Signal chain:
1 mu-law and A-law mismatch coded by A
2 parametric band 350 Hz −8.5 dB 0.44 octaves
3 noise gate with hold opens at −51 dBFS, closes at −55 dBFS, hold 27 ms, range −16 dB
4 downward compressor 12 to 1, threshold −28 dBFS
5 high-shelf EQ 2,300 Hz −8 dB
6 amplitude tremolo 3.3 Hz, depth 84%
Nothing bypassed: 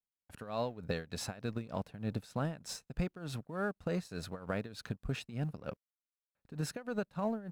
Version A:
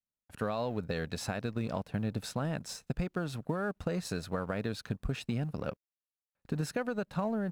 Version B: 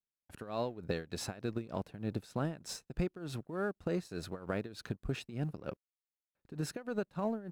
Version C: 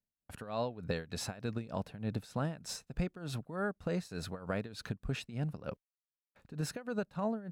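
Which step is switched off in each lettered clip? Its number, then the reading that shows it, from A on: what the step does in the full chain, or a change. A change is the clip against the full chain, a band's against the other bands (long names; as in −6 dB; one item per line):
6, change in momentary loudness spread −2 LU
2, 500 Hz band +2.0 dB
1, distortion level −23 dB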